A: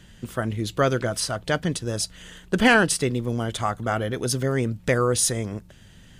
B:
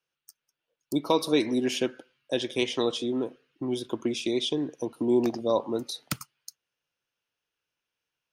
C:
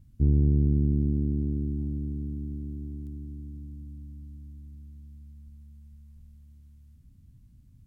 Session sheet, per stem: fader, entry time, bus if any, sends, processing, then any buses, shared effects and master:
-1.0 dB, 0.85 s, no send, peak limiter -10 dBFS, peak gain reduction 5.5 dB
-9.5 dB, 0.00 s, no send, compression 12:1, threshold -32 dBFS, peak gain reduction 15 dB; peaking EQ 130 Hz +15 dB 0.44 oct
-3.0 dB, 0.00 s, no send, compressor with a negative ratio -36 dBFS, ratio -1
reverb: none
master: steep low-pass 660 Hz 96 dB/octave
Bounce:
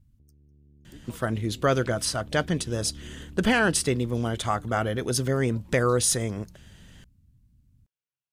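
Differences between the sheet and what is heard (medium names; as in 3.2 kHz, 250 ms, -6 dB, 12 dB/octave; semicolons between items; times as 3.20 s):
stem B -9.5 dB -> -16.0 dB; stem C -3.0 dB -> -12.0 dB; master: missing steep low-pass 660 Hz 96 dB/octave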